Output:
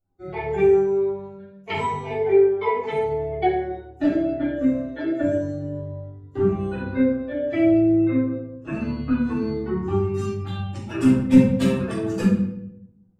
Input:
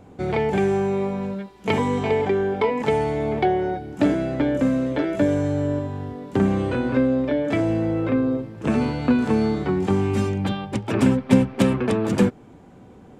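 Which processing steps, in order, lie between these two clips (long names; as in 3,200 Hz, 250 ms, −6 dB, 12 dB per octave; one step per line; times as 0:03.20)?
spectral dynamics exaggerated over time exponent 2
rectangular room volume 190 cubic metres, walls mixed, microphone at 3.5 metres
level −8.5 dB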